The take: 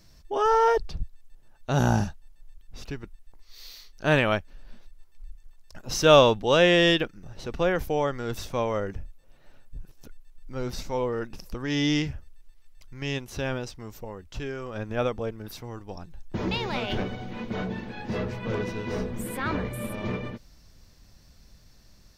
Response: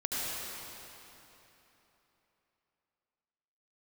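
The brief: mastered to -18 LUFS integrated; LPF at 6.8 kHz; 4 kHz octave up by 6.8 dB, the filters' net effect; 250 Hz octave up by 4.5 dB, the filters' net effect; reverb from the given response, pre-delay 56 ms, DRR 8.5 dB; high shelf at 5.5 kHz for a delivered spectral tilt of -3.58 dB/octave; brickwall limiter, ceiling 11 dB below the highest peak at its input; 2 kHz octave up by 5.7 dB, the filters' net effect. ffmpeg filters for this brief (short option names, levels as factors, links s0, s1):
-filter_complex "[0:a]lowpass=6800,equalizer=f=250:t=o:g=6,equalizer=f=2000:t=o:g=5.5,equalizer=f=4000:t=o:g=9,highshelf=f=5500:g=-6,alimiter=limit=0.266:level=0:latency=1,asplit=2[s0][s1];[1:a]atrim=start_sample=2205,adelay=56[s2];[s1][s2]afir=irnorm=-1:irlink=0,volume=0.168[s3];[s0][s3]amix=inputs=2:normalize=0,volume=2.51"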